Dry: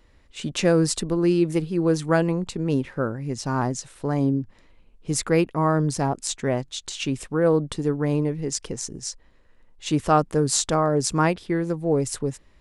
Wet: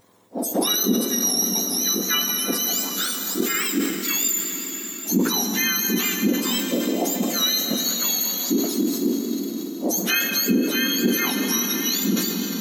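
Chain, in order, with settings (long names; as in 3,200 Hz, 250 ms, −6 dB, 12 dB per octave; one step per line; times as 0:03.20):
frequency axis turned over on the octave scale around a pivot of 1,400 Hz
bit reduction 12 bits
high-shelf EQ 9,300 Hz +3.5 dB
convolution reverb RT60 5.7 s, pre-delay 9 ms, DRR 5 dB
pitch vibrato 5 Hz 21 cents
low-shelf EQ 160 Hz +7 dB
downward compressor 4 to 1, threshold −25 dBFS, peak gain reduction 14 dB
notch filter 4,700 Hz, Q 19
level that may fall only so fast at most 49 dB per second
level +5.5 dB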